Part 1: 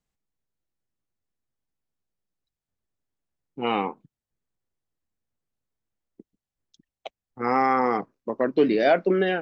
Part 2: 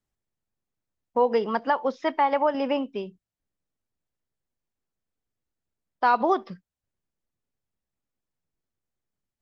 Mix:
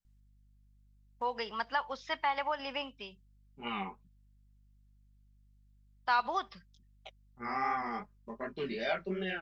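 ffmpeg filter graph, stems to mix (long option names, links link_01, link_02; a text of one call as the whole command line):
ffmpeg -i stem1.wav -i stem2.wav -filter_complex "[0:a]aecho=1:1:5:0.72,flanger=delay=16.5:depth=5.6:speed=2.7,volume=-5.5dB[link_01];[1:a]lowshelf=frequency=470:gain=-12,aeval=exprs='val(0)+0.000891*(sin(2*PI*50*n/s)+sin(2*PI*2*50*n/s)/2+sin(2*PI*3*50*n/s)/3+sin(2*PI*4*50*n/s)/4+sin(2*PI*5*50*n/s)/5)':channel_layout=same,equalizer=frequency=3900:width_type=o:width=0.77:gain=2.5,adelay=50,volume=-0.5dB[link_02];[link_01][link_02]amix=inputs=2:normalize=0,equalizer=frequency=400:width=0.53:gain=-11.5" out.wav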